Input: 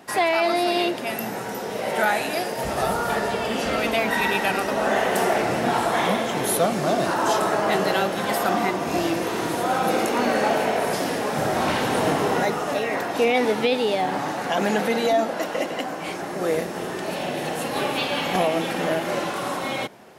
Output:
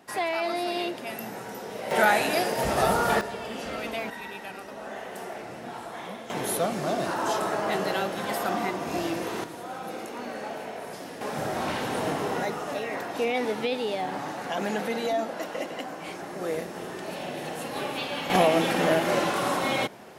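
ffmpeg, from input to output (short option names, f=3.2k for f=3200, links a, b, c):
-af "asetnsamples=n=441:p=0,asendcmd='1.91 volume volume 0.5dB;3.21 volume volume -10dB;4.1 volume volume -16.5dB;6.3 volume volume -6dB;9.44 volume volume -14.5dB;11.21 volume volume -7dB;18.3 volume volume 1dB',volume=-7.5dB"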